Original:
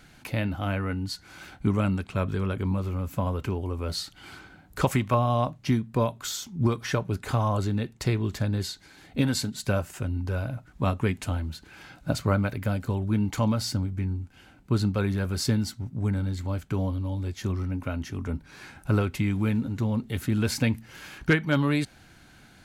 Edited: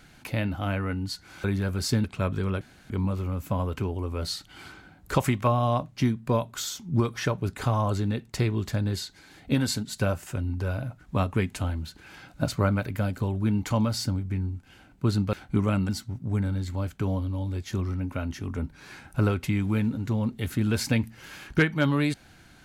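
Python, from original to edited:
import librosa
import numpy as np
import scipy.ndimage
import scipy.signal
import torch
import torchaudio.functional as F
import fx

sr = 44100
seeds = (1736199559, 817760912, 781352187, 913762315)

y = fx.edit(x, sr, fx.swap(start_s=1.44, length_s=0.56, other_s=15.0, other_length_s=0.6),
    fx.insert_room_tone(at_s=2.57, length_s=0.29), tone=tone)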